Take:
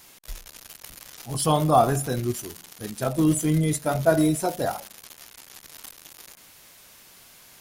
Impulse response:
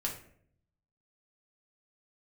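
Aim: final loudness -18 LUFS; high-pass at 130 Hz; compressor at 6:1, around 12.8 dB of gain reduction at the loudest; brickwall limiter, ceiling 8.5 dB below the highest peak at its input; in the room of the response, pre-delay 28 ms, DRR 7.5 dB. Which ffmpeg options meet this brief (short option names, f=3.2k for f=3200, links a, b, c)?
-filter_complex "[0:a]highpass=130,acompressor=threshold=-27dB:ratio=6,alimiter=limit=-23.5dB:level=0:latency=1,asplit=2[a][b];[1:a]atrim=start_sample=2205,adelay=28[c];[b][c]afir=irnorm=-1:irlink=0,volume=-10.5dB[d];[a][d]amix=inputs=2:normalize=0,volume=17.5dB"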